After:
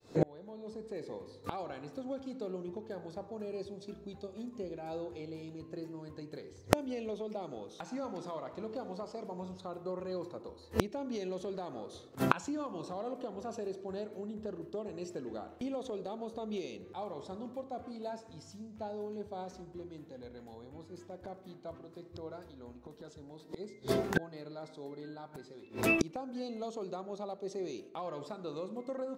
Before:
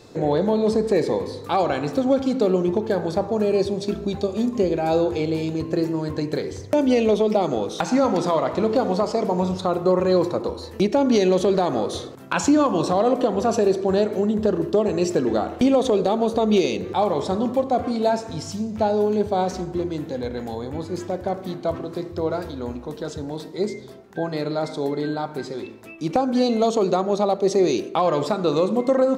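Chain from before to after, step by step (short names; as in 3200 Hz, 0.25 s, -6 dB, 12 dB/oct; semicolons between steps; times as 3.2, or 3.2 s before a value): opening faded in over 1.19 s; flipped gate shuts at -27 dBFS, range -34 dB; gain +13.5 dB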